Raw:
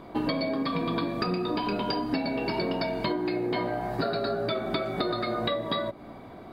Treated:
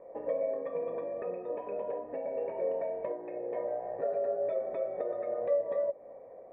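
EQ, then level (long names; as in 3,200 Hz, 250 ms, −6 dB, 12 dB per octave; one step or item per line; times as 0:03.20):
formant resonators in series e
high-frequency loss of the air 150 metres
flat-topped bell 710 Hz +13 dB
−4.0 dB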